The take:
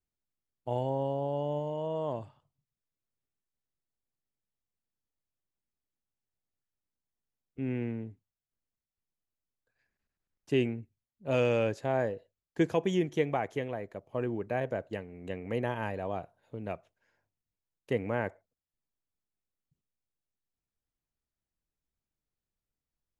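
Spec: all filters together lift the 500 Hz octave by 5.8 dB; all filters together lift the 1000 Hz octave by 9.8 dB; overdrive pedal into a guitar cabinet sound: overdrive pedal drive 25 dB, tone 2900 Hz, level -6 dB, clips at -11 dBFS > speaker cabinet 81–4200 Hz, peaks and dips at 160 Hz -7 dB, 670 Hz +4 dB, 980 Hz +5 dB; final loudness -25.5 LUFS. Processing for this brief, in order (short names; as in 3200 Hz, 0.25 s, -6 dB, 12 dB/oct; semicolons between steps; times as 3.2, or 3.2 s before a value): bell 500 Hz +3 dB; bell 1000 Hz +7 dB; overdrive pedal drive 25 dB, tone 2900 Hz, level -6 dB, clips at -11 dBFS; speaker cabinet 81–4200 Hz, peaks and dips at 160 Hz -7 dB, 670 Hz +4 dB, 980 Hz +5 dB; gain -5.5 dB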